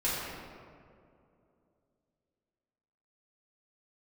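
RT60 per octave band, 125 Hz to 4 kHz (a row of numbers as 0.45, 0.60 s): 2.9, 3.1, 2.9, 2.2, 1.6, 1.1 s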